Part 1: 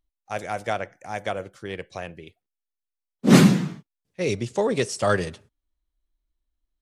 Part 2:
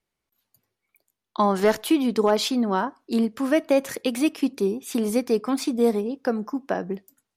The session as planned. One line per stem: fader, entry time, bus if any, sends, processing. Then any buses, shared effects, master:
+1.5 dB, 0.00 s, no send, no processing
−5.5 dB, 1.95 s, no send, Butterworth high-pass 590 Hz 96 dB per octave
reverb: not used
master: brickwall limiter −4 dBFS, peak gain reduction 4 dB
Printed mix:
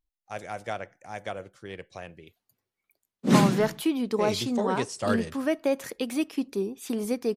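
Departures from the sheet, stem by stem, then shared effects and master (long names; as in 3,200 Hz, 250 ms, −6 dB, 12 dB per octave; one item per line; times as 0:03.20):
stem 1 +1.5 dB → −6.5 dB
stem 2: missing Butterworth high-pass 590 Hz 96 dB per octave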